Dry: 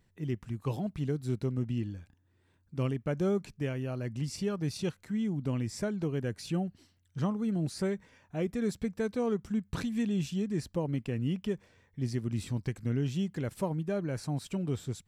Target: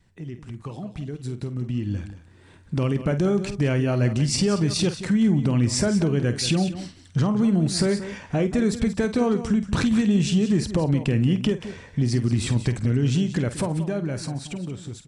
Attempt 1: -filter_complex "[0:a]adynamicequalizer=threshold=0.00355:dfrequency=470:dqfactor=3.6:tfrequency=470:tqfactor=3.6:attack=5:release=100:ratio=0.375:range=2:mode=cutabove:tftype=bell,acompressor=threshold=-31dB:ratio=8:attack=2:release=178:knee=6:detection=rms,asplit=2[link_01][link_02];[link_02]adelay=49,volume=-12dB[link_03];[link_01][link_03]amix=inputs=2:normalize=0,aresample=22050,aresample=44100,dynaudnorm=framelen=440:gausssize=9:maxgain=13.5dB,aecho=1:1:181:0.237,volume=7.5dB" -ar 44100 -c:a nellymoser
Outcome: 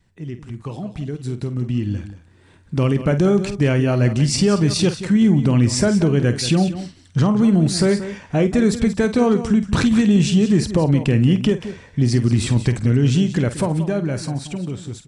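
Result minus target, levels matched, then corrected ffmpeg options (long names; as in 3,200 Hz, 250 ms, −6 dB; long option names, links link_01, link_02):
downward compressor: peak gain reduction −5.5 dB
-filter_complex "[0:a]adynamicequalizer=threshold=0.00355:dfrequency=470:dqfactor=3.6:tfrequency=470:tqfactor=3.6:attack=5:release=100:ratio=0.375:range=2:mode=cutabove:tftype=bell,acompressor=threshold=-37.5dB:ratio=8:attack=2:release=178:knee=6:detection=rms,asplit=2[link_01][link_02];[link_02]adelay=49,volume=-12dB[link_03];[link_01][link_03]amix=inputs=2:normalize=0,aresample=22050,aresample=44100,dynaudnorm=framelen=440:gausssize=9:maxgain=13.5dB,aecho=1:1:181:0.237,volume=7.5dB" -ar 44100 -c:a nellymoser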